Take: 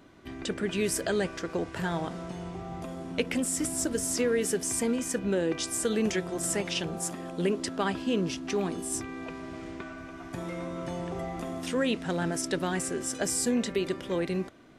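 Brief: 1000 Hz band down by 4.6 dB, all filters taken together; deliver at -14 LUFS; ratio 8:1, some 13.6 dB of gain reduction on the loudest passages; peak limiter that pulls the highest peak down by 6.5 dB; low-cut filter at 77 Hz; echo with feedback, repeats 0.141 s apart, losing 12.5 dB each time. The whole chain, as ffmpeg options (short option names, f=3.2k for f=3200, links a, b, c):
-af "highpass=77,equalizer=f=1k:t=o:g=-6.5,acompressor=threshold=-38dB:ratio=8,alimiter=level_in=8.5dB:limit=-24dB:level=0:latency=1,volume=-8.5dB,aecho=1:1:141|282|423:0.237|0.0569|0.0137,volume=28dB"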